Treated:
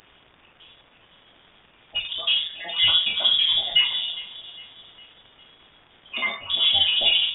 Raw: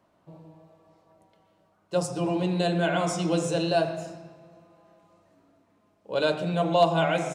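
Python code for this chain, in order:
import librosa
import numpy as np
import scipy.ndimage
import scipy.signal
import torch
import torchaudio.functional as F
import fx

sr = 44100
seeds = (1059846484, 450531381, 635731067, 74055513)

p1 = fx.spec_dropout(x, sr, seeds[0], share_pct=78)
p2 = fx.room_shoebox(p1, sr, seeds[1], volume_m3=290.0, walls='furnished', distance_m=3.4)
p3 = fx.dmg_noise_colour(p2, sr, seeds[2], colour='violet', level_db=-40.0)
p4 = fx.schmitt(p3, sr, flips_db=-24.5)
p5 = p3 + (p4 * librosa.db_to_amplitude(-11.0))
p6 = fx.dmg_crackle(p5, sr, seeds[3], per_s=490.0, level_db=-42.0)
p7 = p6 + fx.echo_feedback(p6, sr, ms=407, feedback_pct=48, wet_db=-18, dry=0)
p8 = fx.freq_invert(p7, sr, carrier_hz=3600)
p9 = fx.end_taper(p8, sr, db_per_s=240.0)
y = p9 * librosa.db_to_amplitude(3.0)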